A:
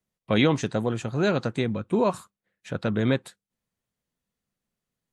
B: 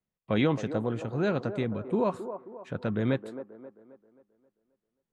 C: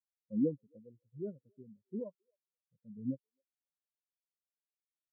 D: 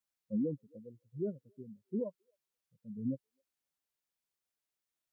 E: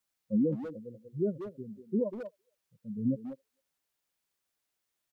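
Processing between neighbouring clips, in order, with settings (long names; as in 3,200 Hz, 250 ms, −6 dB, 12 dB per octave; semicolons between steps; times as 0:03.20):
high-shelf EQ 3,800 Hz −12 dB; delay with a band-pass on its return 266 ms, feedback 44%, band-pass 570 Hz, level −9.5 dB; level −4 dB
every bin expanded away from the loudest bin 4 to 1; level −8 dB
brickwall limiter −32 dBFS, peak gain reduction 10.5 dB; level +5 dB
far-end echo of a speakerphone 190 ms, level −6 dB; level +6 dB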